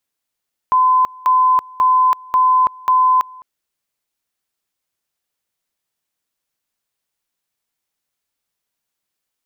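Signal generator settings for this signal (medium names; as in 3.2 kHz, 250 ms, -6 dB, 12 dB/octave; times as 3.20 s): two-level tone 1.02 kHz -9.5 dBFS, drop 25 dB, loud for 0.33 s, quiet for 0.21 s, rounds 5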